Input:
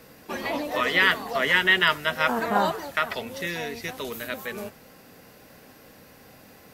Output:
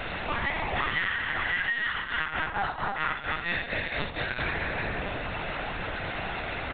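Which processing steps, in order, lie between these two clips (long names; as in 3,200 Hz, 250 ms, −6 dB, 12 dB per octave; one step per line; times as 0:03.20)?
dynamic equaliser 1,700 Hz, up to +5 dB, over −35 dBFS, Q 1.7
high-pass filter 350 Hz 24 dB per octave
low-shelf EQ 450 Hz −11.5 dB
single-tap delay 318 ms −10.5 dB
upward compression, threshold −32 dBFS
rectangular room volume 1,900 cubic metres, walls mixed, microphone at 3.6 metres
harmonic generator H 5 −21 dB, 7 −24 dB, 8 −30 dB, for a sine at 1 dBFS
0:01.91–0:04.40: shaped tremolo triangle 4.4 Hz, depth 85%
downward compressor 20 to 1, threshold −32 dBFS, peak gain reduction 27 dB
linear-prediction vocoder at 8 kHz pitch kept
level +6.5 dB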